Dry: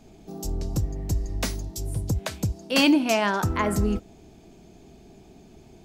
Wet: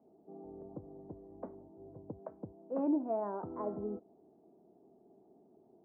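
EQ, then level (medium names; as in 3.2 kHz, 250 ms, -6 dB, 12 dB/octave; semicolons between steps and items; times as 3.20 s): high-pass 370 Hz 12 dB/octave; Bessel low-pass 580 Hz, order 6; -6.0 dB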